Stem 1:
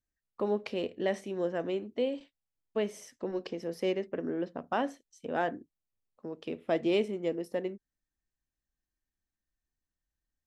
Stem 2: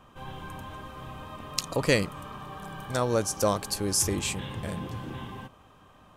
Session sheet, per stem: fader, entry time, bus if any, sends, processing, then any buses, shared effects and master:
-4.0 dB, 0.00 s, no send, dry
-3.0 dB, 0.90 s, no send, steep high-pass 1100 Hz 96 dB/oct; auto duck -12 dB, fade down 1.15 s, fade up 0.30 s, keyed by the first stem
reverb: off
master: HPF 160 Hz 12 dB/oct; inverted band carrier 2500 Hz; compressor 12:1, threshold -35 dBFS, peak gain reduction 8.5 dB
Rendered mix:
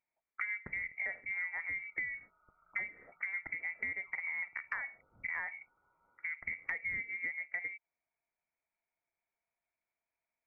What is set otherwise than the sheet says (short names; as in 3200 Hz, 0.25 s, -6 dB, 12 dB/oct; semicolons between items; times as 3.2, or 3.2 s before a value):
stem 1 -4.0 dB -> +4.0 dB; stem 2 -3.0 dB -> -12.0 dB